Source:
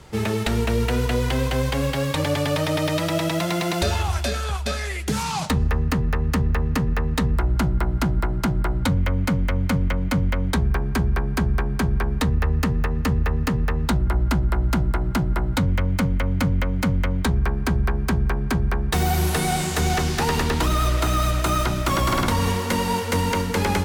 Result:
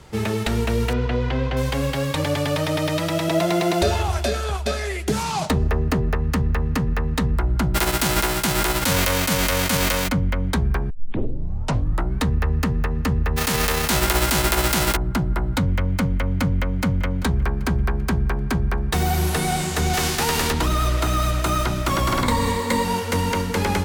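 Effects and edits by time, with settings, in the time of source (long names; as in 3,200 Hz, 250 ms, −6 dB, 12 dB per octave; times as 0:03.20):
0:00.93–0:01.57: high-frequency loss of the air 210 metres
0:03.28–0:06.15: hollow resonant body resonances 390/640 Hz, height 8 dB, ringing for 25 ms
0:07.74–0:10.07: spectral envelope flattened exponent 0.3
0:10.90: tape start 1.32 s
0:13.36–0:14.95: spectral envelope flattened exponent 0.3
0:16.47–0:17.03: delay throw 390 ms, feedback 50%, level −15.5 dB
0:19.93–0:20.51: spectral envelope flattened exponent 0.6
0:22.22–0:22.85: EQ curve with evenly spaced ripples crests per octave 1, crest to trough 8 dB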